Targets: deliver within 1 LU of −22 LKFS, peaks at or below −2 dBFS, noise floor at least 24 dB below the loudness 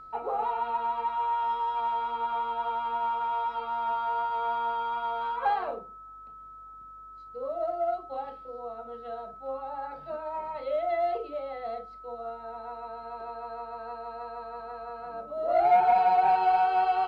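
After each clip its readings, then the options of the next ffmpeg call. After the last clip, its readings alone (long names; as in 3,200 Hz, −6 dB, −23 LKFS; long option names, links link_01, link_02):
interfering tone 1,300 Hz; level of the tone −44 dBFS; integrated loudness −29.5 LKFS; sample peak −13.0 dBFS; target loudness −22.0 LKFS
→ -af "bandreject=frequency=1300:width=30"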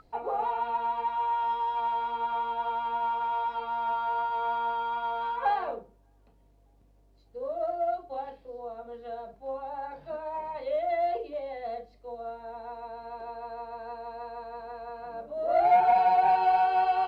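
interfering tone none found; integrated loudness −29.0 LKFS; sample peak −13.5 dBFS; target loudness −22.0 LKFS
→ -af "volume=7dB"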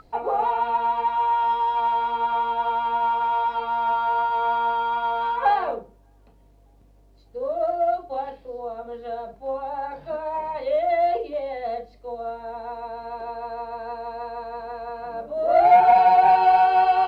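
integrated loudness −22.0 LKFS; sample peak −6.5 dBFS; background noise floor −55 dBFS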